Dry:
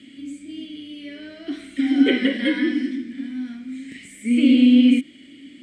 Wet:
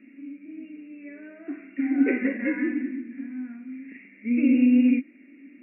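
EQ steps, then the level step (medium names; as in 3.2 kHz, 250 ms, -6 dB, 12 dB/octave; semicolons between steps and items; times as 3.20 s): brick-wall FIR band-pass 180–2800 Hz; -5.0 dB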